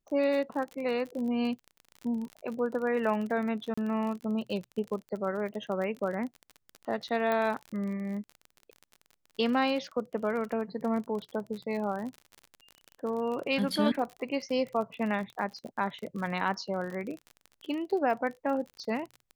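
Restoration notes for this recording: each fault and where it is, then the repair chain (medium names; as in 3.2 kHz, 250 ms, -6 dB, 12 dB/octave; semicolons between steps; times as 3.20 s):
crackle 39 per s -36 dBFS
3.74–3.77 s: dropout 35 ms
7.32 s: pop -18 dBFS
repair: de-click; interpolate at 3.74 s, 35 ms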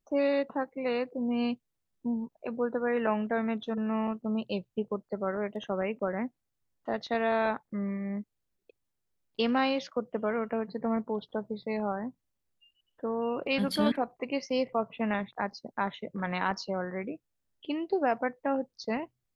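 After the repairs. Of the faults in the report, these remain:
nothing left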